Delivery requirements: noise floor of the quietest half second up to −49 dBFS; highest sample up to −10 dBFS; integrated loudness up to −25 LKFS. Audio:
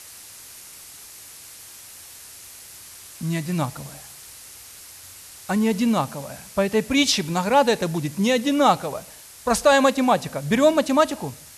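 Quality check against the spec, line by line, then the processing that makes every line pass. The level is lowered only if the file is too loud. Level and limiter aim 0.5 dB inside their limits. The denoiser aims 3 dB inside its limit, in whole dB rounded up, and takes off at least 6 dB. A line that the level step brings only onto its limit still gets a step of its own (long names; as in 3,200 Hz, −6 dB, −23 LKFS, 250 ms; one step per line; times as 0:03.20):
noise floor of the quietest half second −43 dBFS: out of spec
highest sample −5.5 dBFS: out of spec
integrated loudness −21.0 LKFS: out of spec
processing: broadband denoise 6 dB, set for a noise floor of −43 dBFS
level −4.5 dB
brickwall limiter −10.5 dBFS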